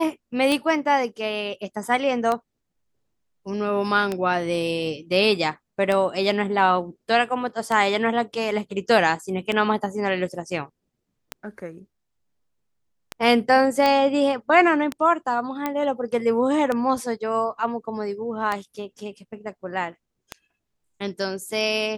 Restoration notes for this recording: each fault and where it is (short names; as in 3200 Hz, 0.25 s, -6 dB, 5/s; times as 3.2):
tick 33 1/3 rpm -11 dBFS
13.86 pop -8 dBFS
15.66 pop -11 dBFS